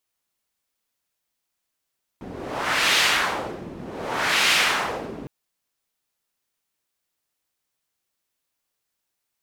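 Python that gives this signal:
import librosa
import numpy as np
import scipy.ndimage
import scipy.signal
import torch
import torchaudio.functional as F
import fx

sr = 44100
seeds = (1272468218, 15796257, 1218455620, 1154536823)

y = fx.wind(sr, seeds[0], length_s=3.06, low_hz=270.0, high_hz=2800.0, q=1.1, gusts=2, swing_db=18)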